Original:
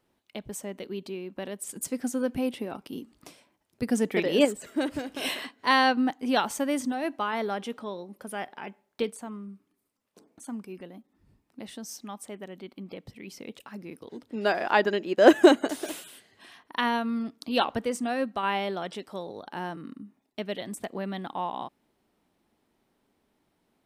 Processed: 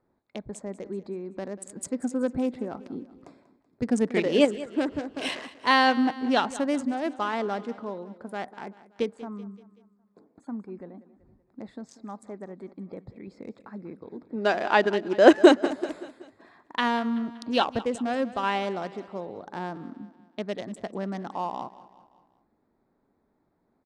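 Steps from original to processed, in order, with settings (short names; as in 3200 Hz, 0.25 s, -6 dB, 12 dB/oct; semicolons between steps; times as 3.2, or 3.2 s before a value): Wiener smoothing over 15 samples; LPF 9000 Hz 24 dB/oct; on a send: feedback echo 0.19 s, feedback 50%, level -17 dB; on the sum: gain +1.5 dB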